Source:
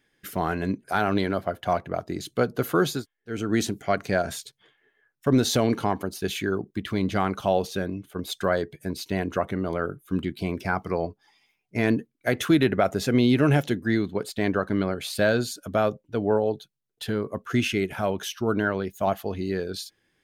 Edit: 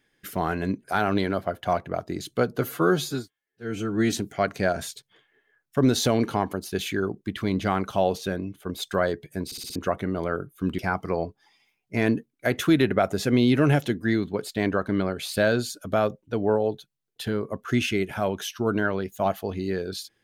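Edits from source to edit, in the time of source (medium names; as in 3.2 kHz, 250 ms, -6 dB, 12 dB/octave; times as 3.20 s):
2.61–3.62 s: stretch 1.5×
8.95 s: stutter in place 0.06 s, 5 plays
10.28–10.60 s: delete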